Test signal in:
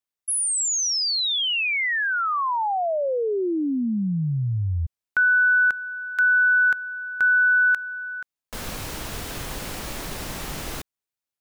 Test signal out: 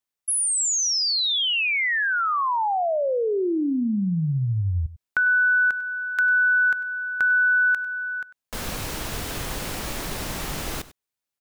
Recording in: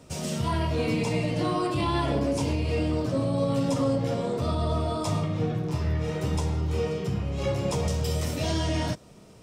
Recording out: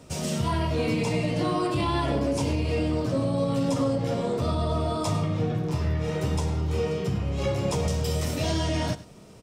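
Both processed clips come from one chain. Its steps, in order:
downward compressor 2 to 1, threshold −24 dBFS
on a send: single-tap delay 98 ms −17 dB
on the sum: level +2 dB

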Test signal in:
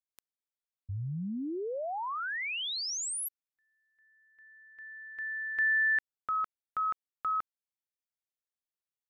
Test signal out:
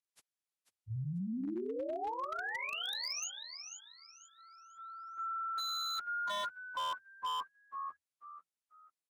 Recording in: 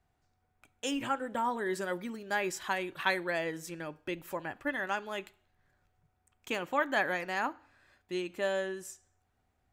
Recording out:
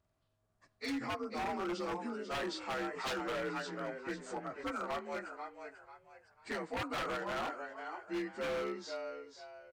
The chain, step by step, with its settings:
partials spread apart or drawn together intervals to 86%
echo with shifted repeats 492 ms, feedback 31%, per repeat +80 Hz, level −8.5 dB
wave folding −30 dBFS
level −1.5 dB

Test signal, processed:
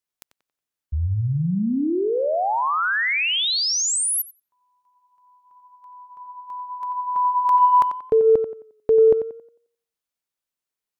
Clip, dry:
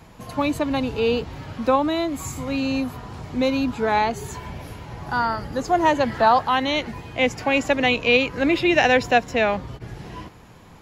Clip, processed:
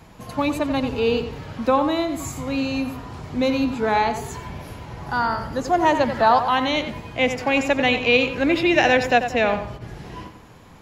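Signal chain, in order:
tape delay 90 ms, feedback 36%, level −8 dB, low-pass 3,100 Hz

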